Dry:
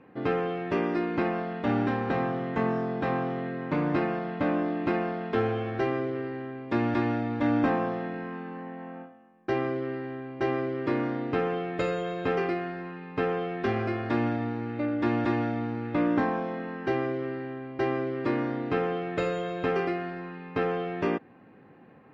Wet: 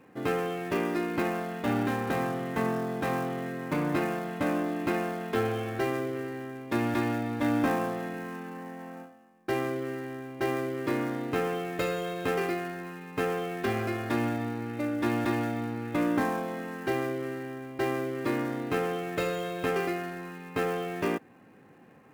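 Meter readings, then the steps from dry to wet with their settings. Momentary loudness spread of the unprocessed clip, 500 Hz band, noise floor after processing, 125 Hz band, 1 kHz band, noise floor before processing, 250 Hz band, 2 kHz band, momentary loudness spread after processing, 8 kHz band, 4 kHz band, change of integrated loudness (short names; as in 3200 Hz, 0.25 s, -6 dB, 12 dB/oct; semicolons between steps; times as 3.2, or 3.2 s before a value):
8 LU, -2.0 dB, -55 dBFS, -2.0 dB, -1.5 dB, -54 dBFS, -2.0 dB, 0.0 dB, 8 LU, n/a, +2.5 dB, -1.5 dB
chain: switching dead time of 0.054 ms; high shelf 2600 Hz +7 dB; gain -2 dB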